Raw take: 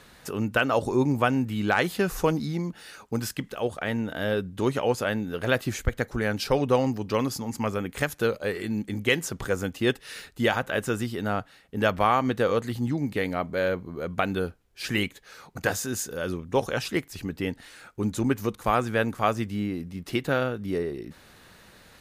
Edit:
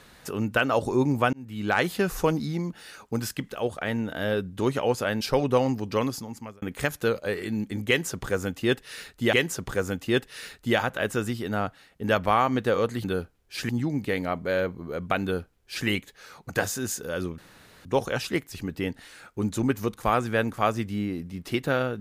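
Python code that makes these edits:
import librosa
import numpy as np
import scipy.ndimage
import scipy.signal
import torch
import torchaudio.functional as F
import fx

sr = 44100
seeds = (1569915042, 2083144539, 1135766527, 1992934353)

y = fx.edit(x, sr, fx.fade_in_span(start_s=1.33, length_s=0.44),
    fx.cut(start_s=5.21, length_s=1.18),
    fx.fade_out_span(start_s=7.19, length_s=0.61),
    fx.repeat(start_s=9.06, length_s=1.45, count=2),
    fx.duplicate(start_s=14.3, length_s=0.65, to_s=12.77),
    fx.insert_room_tone(at_s=16.46, length_s=0.47), tone=tone)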